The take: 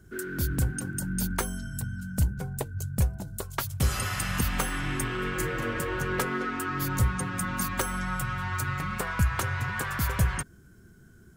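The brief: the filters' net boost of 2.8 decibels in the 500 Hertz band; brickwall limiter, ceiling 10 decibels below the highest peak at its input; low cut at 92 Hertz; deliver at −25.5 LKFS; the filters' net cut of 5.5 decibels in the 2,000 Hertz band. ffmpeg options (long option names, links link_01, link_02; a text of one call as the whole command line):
ffmpeg -i in.wav -af "highpass=92,equalizer=frequency=500:width_type=o:gain=4,equalizer=frequency=2000:width_type=o:gain=-8.5,volume=8.5dB,alimiter=limit=-15dB:level=0:latency=1" out.wav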